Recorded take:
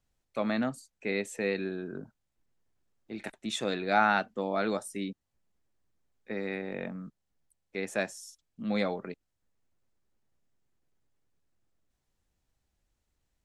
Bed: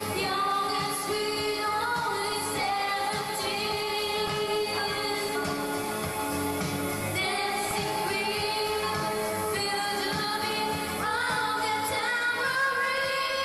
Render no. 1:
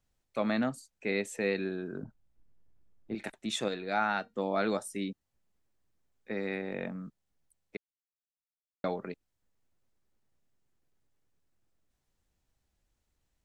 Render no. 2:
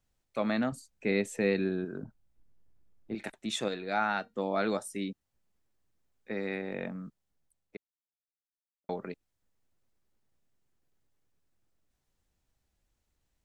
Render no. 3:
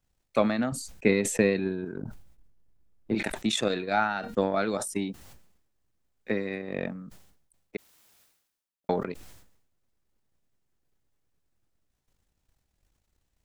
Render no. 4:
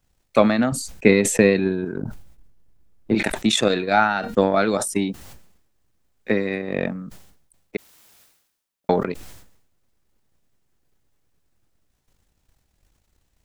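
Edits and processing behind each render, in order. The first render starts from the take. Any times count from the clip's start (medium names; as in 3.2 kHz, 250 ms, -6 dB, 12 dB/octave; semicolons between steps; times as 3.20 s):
2.03–3.15 s: tilt EQ -2.5 dB/octave; 3.68–4.34 s: feedback comb 470 Hz, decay 0.19 s, mix 50%; 7.77–8.84 s: mute
0.72–1.85 s: bass shelf 300 Hz +8 dB; 7.05–8.89 s: studio fade out
transient shaper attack +10 dB, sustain -6 dB; decay stretcher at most 67 dB/s
trim +8 dB; peak limiter -1 dBFS, peak gain reduction 1 dB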